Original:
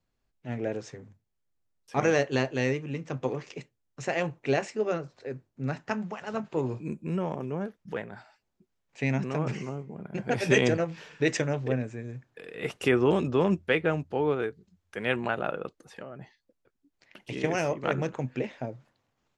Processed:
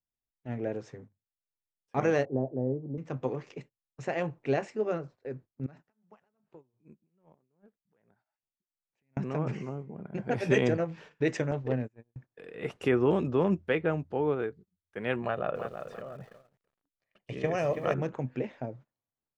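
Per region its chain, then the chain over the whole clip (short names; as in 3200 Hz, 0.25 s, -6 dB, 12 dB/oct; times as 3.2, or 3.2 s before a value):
2.25–2.98 elliptic band-pass 100–730 Hz, stop band 60 dB + air absorption 240 m
5.66–9.17 compressor 10:1, threshold -43 dBFS + tremolo triangle 2.6 Hz, depth 85%
11.51–12.16 self-modulated delay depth 0.095 ms + gate -35 dBFS, range -30 dB
15.22–17.94 comb 1.7 ms, depth 44% + lo-fi delay 0.33 s, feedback 35%, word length 8-bit, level -8 dB
whole clip: gate -47 dBFS, range -18 dB; high shelf 2500 Hz -10.5 dB; gain -1.5 dB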